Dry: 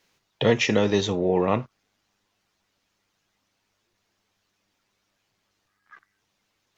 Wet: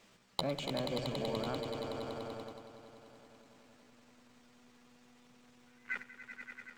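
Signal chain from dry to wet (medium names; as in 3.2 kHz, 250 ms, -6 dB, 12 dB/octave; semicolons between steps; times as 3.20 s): in parallel at -4.5 dB: Schmitt trigger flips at -21 dBFS; on the sum: inverted gate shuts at -22 dBFS, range -31 dB; saturation -29.5 dBFS, distortion -8 dB; treble shelf 2.7 kHz -8 dB; on a send: echo with a slow build-up 95 ms, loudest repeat 5, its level -8.5 dB; on the sum: gate -57 dBFS, range -6 dB; pitch shift +3.5 st; peaking EQ 200 Hz +6 dB 0.33 oct; trim +13 dB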